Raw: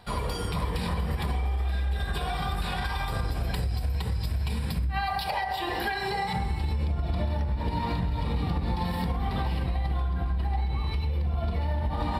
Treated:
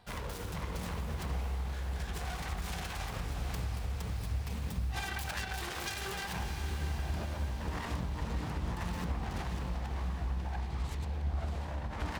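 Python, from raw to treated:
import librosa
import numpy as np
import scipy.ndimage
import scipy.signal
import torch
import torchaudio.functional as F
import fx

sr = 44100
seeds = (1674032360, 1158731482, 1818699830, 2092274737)

y = fx.self_delay(x, sr, depth_ms=0.73)
y = fx.echo_diffused(y, sr, ms=645, feedback_pct=58, wet_db=-7.5)
y = F.gain(torch.from_numpy(y), -8.5).numpy()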